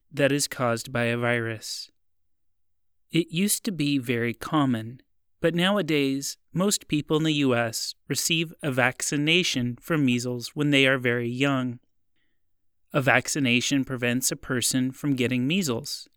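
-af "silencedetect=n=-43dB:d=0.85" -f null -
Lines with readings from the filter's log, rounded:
silence_start: 1.86
silence_end: 3.13 | silence_duration: 1.27
silence_start: 11.77
silence_end: 12.93 | silence_duration: 1.16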